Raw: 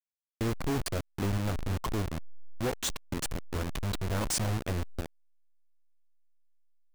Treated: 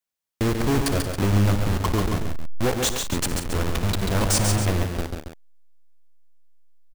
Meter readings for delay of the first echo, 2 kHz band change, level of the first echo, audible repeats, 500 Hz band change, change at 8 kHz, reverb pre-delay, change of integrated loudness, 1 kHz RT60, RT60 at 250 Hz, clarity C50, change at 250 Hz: 58 ms, +9.5 dB, -16.0 dB, 5, +9.5 dB, +9.5 dB, none, +10.0 dB, none, none, none, +10.0 dB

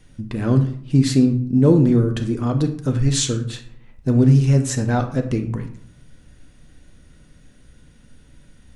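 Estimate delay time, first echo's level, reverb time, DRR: none, none, 0.60 s, 5.0 dB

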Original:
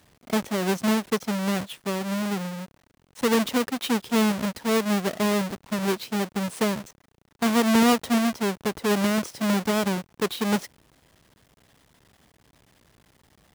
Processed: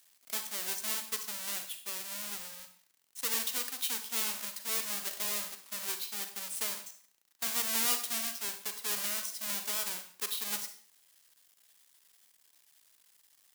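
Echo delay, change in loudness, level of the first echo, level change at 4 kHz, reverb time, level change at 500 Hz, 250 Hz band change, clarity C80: none, -8.0 dB, none, -5.0 dB, 0.50 s, -22.5 dB, -29.0 dB, 12.5 dB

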